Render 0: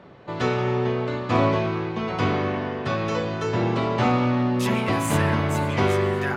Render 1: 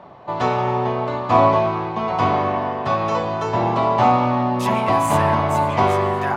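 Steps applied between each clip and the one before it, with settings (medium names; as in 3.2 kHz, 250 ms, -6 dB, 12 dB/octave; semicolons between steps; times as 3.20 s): high-order bell 840 Hz +10.5 dB 1.1 oct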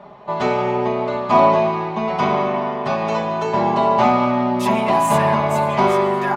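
comb 4.9 ms, depth 88%; trim -1 dB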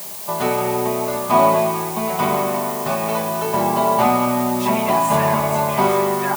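added noise blue -31 dBFS; trim -1 dB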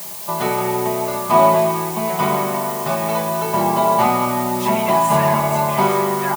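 comb 5.9 ms, depth 38%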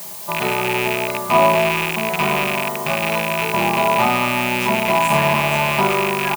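rattle on loud lows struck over -29 dBFS, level -8 dBFS; trim -1.5 dB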